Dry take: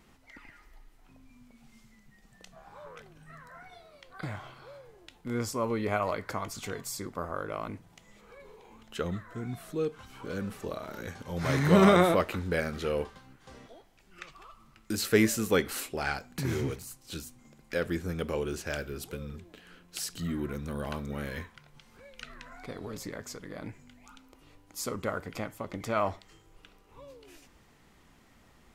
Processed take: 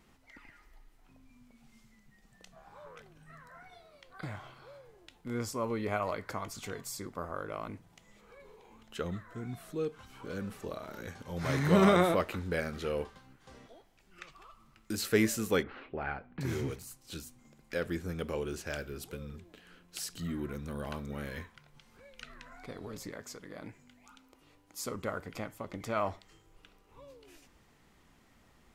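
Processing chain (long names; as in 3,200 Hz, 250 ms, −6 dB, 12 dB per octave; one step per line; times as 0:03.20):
0:15.63–0:16.41: Bessel low-pass filter 1,800 Hz, order 6
0:23.11–0:24.84: low-shelf EQ 110 Hz −8 dB
level −3.5 dB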